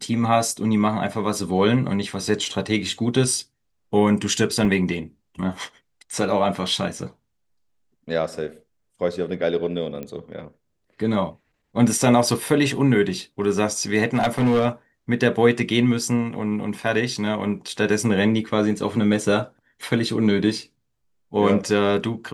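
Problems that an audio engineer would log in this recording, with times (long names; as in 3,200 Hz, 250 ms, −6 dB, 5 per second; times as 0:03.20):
0:04.65: drop-out 2.9 ms
0:10.03: click −20 dBFS
0:14.14–0:14.66: clipping −14 dBFS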